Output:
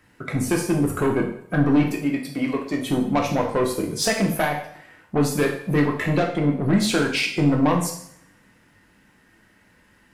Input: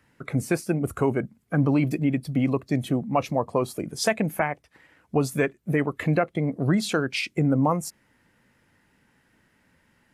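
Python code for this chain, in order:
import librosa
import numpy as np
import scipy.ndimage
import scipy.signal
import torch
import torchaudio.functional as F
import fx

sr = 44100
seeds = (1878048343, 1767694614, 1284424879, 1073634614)

y = fx.highpass(x, sr, hz=510.0, slope=6, at=(1.83, 2.86))
y = 10.0 ** (-20.0 / 20.0) * np.tanh(y / 10.0 ** (-20.0 / 20.0))
y = fx.rev_double_slope(y, sr, seeds[0], early_s=0.61, late_s=1.6, knee_db=-26, drr_db=0.0)
y = F.gain(torch.from_numpy(y), 4.0).numpy()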